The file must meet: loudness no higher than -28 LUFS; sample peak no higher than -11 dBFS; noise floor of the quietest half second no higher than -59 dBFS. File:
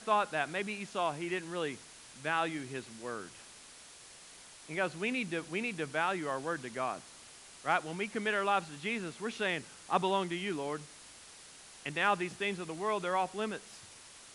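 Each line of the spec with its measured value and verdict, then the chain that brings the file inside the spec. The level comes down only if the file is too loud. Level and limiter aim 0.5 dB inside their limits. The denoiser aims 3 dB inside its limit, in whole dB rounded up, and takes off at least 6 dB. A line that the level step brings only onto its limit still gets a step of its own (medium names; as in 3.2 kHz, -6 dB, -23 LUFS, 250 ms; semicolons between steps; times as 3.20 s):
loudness -35.0 LUFS: pass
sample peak -15.5 dBFS: pass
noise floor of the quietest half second -54 dBFS: fail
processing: noise reduction 8 dB, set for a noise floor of -54 dBFS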